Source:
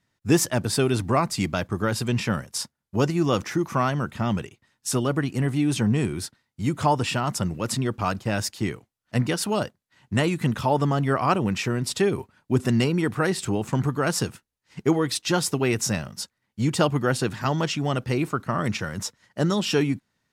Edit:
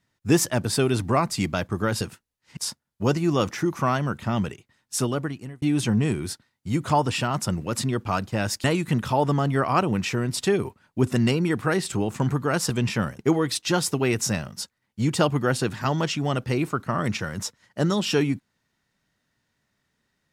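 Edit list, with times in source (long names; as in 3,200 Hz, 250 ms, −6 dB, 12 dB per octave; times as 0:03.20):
0:02.01–0:02.50: swap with 0:14.23–0:14.79
0:04.93–0:05.55: fade out
0:08.57–0:10.17: remove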